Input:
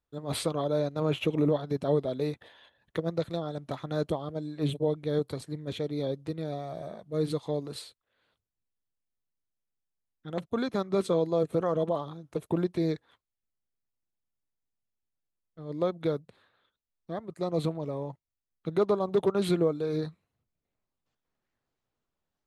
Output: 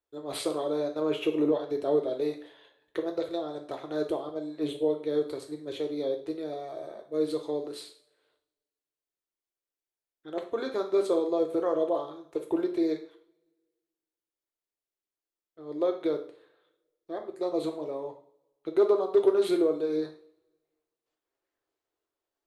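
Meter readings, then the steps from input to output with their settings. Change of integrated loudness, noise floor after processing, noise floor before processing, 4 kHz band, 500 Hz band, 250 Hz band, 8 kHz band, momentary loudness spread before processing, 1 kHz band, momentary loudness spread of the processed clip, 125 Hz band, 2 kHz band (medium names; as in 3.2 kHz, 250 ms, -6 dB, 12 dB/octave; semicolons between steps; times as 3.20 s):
+1.0 dB, under -85 dBFS, under -85 dBFS, -1.5 dB, +2.0 dB, +0.5 dB, no reading, 12 LU, -1.0 dB, 14 LU, -16.0 dB, -1.5 dB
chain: resonant low shelf 260 Hz -10 dB, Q 3; two-slope reverb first 0.45 s, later 1.5 s, from -26 dB, DRR 3.5 dB; trim -3.5 dB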